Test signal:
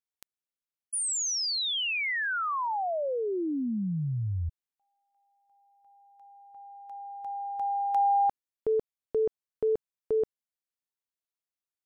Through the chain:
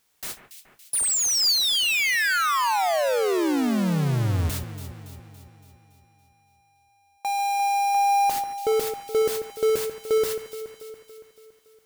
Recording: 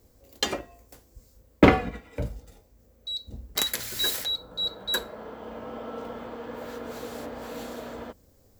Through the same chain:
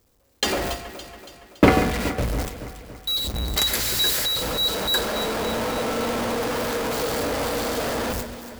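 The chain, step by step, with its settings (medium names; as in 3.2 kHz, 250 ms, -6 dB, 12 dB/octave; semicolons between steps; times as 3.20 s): jump at every zero crossing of -22 dBFS; gate with hold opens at -24 dBFS, closes at -27 dBFS, hold 71 ms, range -36 dB; dynamic bell 4.7 kHz, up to +4 dB, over -44 dBFS, Q 6.4; on a send: echo whose repeats swap between lows and highs 141 ms, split 2.4 kHz, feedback 74%, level -9 dB; on the sum: short-mantissa float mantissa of 4-bit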